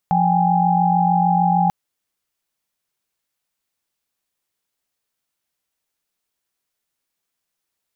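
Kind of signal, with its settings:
held notes F3/G5/G#5 sine, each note −18 dBFS 1.59 s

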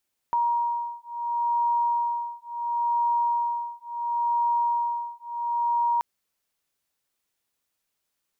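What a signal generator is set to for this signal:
two tones that beat 946 Hz, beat 0.72 Hz, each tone −26 dBFS 5.68 s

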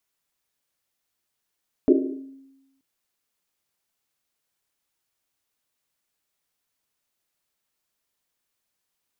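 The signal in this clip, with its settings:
drum after Risset length 0.93 s, pitch 270 Hz, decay 1.10 s, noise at 360 Hz, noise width 130 Hz, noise 55%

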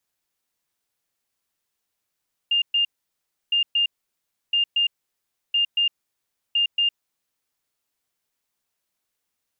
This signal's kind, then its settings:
beeps in groups sine 2,810 Hz, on 0.11 s, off 0.12 s, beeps 2, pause 0.67 s, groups 5, −17 dBFS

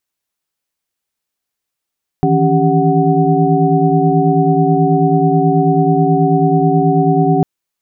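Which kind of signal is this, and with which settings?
held notes D#3/E3/C#4/G4/F#5 sine, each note −15.5 dBFS 5.20 s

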